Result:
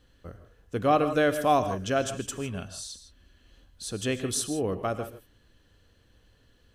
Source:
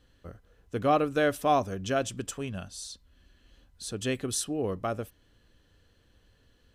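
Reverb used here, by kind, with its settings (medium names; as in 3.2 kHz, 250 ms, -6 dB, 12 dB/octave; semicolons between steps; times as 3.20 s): gated-style reverb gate 180 ms rising, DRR 10 dB; trim +1.5 dB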